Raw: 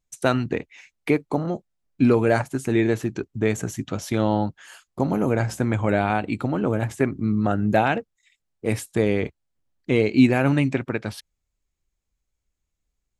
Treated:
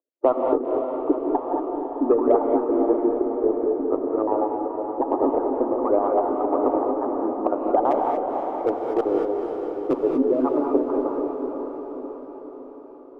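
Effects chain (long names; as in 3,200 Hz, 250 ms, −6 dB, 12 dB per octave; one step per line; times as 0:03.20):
time-frequency cells dropped at random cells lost 39%
Chebyshev band-pass filter 270–1,200 Hz, order 5
harmonic and percussive parts rebalanced harmonic −7 dB
in parallel at −2.5 dB: downward compressor 10 to 1, threshold −33 dBFS, peak gain reduction 15.5 dB
0:07.91–0:10.01: on the sum: hard clipping −18 dBFS, distortion −25 dB
harmonic generator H 4 −44 dB, 6 −35 dB, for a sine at −8.5 dBFS
on a send: feedback delay with all-pass diffusion 497 ms, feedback 57%, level −6 dB
on the sum: reverb whose tail is shaped and stops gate 260 ms rising, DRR 1.5 dB
level +3.5 dB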